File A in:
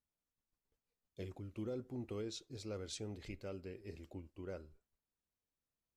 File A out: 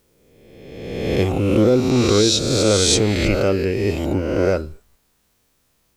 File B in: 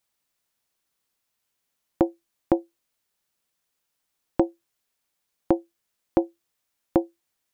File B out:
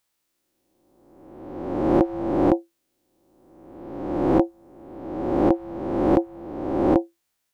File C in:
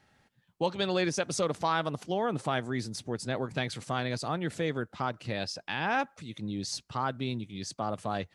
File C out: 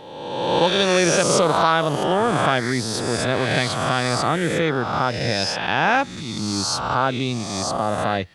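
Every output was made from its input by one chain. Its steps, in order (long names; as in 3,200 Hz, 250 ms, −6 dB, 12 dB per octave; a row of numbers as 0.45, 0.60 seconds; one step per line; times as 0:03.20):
peak hold with a rise ahead of every peak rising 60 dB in 1.41 s
normalise the peak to −3 dBFS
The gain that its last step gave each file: +26.0, −0.5, +8.5 decibels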